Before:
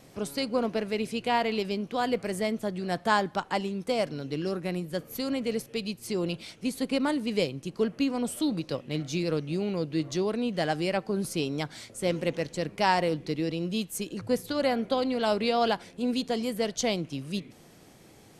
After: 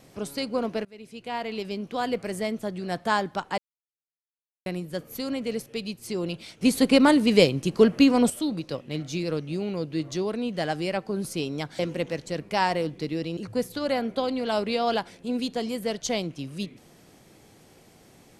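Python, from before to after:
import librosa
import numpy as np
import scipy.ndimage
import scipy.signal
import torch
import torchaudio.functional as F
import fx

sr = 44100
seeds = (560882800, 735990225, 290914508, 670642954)

y = fx.edit(x, sr, fx.fade_in_from(start_s=0.85, length_s=1.07, floor_db=-24.0),
    fx.silence(start_s=3.58, length_s=1.08),
    fx.clip_gain(start_s=6.61, length_s=1.69, db=9.5),
    fx.cut(start_s=11.79, length_s=0.27),
    fx.cut(start_s=13.64, length_s=0.47), tone=tone)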